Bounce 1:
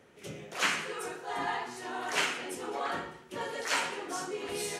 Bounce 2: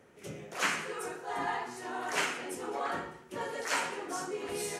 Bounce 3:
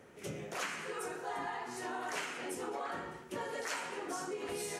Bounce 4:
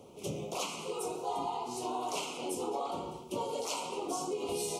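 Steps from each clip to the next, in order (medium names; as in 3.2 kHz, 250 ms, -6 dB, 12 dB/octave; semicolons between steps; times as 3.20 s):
peaking EQ 3.5 kHz -5 dB 1.1 oct
compression 6:1, threshold -39 dBFS, peak gain reduction 13.5 dB; trim +2.5 dB
Chebyshev band-stop 1–2.9 kHz, order 2; trim +5.5 dB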